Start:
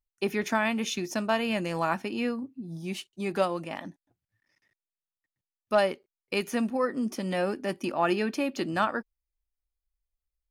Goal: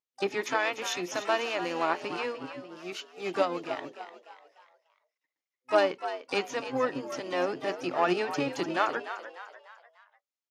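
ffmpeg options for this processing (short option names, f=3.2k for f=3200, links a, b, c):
-filter_complex "[0:a]aeval=exprs='0.251*(cos(1*acos(clip(val(0)/0.251,-1,1)))-cos(1*PI/2))+0.00708*(cos(3*acos(clip(val(0)/0.251,-1,1)))-cos(3*PI/2))+0.01*(cos(4*acos(clip(val(0)/0.251,-1,1)))-cos(4*PI/2))':c=same,afftfilt=real='re*between(b*sr/4096,250,7300)':imag='im*between(b*sr/4096,250,7300)':win_size=4096:overlap=0.75,asplit=4[a][b][c][d];[b]asetrate=22050,aresample=44100,atempo=2,volume=-12dB[e];[c]asetrate=66075,aresample=44100,atempo=0.66742,volume=-18dB[f];[d]asetrate=88200,aresample=44100,atempo=0.5,volume=-17dB[g];[a][e][f][g]amix=inputs=4:normalize=0,asplit=2[h][i];[i]asplit=4[j][k][l][m];[j]adelay=297,afreqshift=80,volume=-11dB[n];[k]adelay=594,afreqshift=160,volume=-18.3dB[o];[l]adelay=891,afreqshift=240,volume=-25.7dB[p];[m]adelay=1188,afreqshift=320,volume=-33dB[q];[n][o][p][q]amix=inputs=4:normalize=0[r];[h][r]amix=inputs=2:normalize=0"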